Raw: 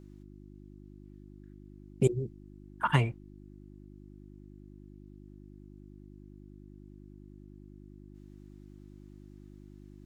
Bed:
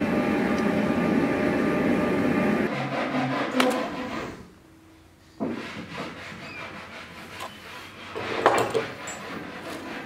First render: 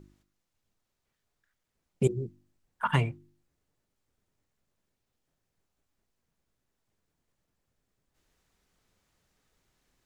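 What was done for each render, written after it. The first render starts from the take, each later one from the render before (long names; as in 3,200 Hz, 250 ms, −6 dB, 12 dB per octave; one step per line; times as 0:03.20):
hum removal 50 Hz, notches 7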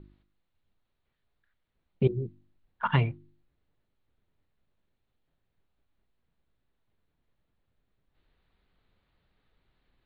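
Butterworth low-pass 4,300 Hz 72 dB per octave
low-shelf EQ 81 Hz +7 dB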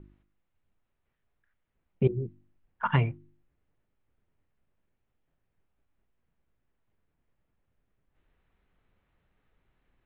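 low-pass filter 2,900 Hz 24 dB per octave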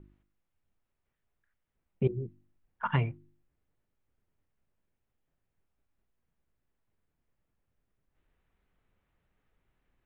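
level −3.5 dB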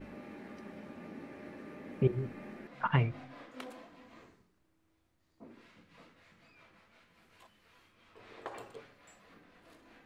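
mix in bed −24.5 dB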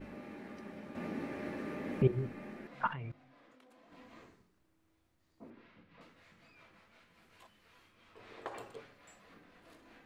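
0:00.95–0:02.02: clip gain +7 dB
0:02.93–0:03.92: output level in coarse steps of 21 dB
0:05.50–0:06.01: high-frequency loss of the air 210 metres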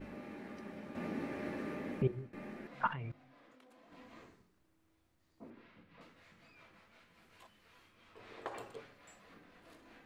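0:01.53–0:02.33: fade out equal-power, to −18 dB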